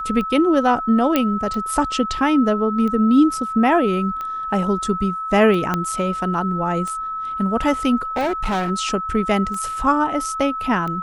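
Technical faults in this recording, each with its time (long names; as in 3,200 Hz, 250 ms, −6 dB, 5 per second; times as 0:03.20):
scratch tick 45 rpm −17 dBFS
whistle 1,300 Hz −24 dBFS
0:01.16: click −4 dBFS
0:05.74: click −7 dBFS
0:08.16–0:08.71: clipping −18 dBFS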